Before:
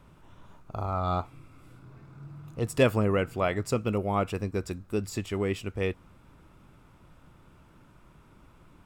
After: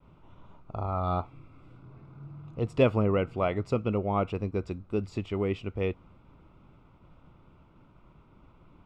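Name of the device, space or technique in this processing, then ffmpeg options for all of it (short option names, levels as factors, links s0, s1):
hearing-loss simulation: -af "lowpass=2900,equalizer=f=1700:t=o:w=0.27:g=-14,agate=range=0.0224:threshold=0.002:ratio=3:detection=peak"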